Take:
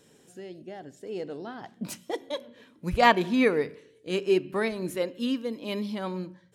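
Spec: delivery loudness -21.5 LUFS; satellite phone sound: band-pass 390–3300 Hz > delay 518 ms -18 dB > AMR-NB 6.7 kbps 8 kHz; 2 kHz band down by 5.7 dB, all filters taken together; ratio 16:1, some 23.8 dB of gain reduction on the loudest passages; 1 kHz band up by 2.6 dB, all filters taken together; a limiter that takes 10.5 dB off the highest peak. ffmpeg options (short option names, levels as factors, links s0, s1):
-af "equalizer=f=1000:t=o:g=5,equalizer=f=2000:t=o:g=-7.5,acompressor=threshold=0.0158:ratio=16,alimiter=level_in=4.47:limit=0.0631:level=0:latency=1,volume=0.224,highpass=390,lowpass=3300,aecho=1:1:518:0.126,volume=28.2" -ar 8000 -c:a libopencore_amrnb -b:a 6700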